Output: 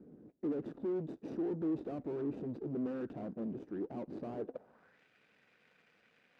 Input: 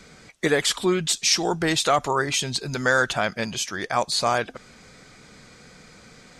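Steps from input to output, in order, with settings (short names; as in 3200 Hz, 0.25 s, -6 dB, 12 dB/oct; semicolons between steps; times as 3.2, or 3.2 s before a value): median filter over 41 samples; tube stage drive 36 dB, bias 0.65; band-pass sweep 300 Hz -> 2400 Hz, 4.35–5.02; gain +6.5 dB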